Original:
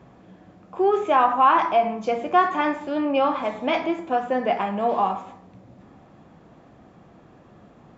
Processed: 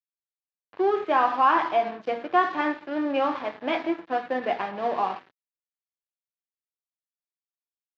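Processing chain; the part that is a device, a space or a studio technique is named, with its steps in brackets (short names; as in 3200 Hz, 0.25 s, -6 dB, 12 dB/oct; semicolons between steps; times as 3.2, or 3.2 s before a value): blown loudspeaker (crossover distortion -36 dBFS; speaker cabinet 130–4700 Hz, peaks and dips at 200 Hz -6 dB, 320 Hz +4 dB, 1700 Hz +5 dB); gain -3 dB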